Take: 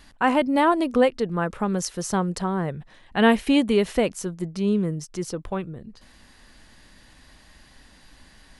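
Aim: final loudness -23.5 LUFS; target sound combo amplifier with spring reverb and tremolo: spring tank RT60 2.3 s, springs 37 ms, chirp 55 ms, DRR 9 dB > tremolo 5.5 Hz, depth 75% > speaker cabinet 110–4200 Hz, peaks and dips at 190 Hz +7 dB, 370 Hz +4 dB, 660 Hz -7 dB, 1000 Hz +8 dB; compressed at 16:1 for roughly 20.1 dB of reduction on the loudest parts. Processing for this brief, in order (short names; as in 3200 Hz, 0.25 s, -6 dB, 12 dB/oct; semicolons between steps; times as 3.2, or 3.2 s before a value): compressor 16:1, threshold -33 dBFS; spring tank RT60 2.3 s, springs 37 ms, chirp 55 ms, DRR 9 dB; tremolo 5.5 Hz, depth 75%; speaker cabinet 110–4200 Hz, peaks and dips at 190 Hz +7 dB, 370 Hz +4 dB, 660 Hz -7 dB, 1000 Hz +8 dB; gain +15.5 dB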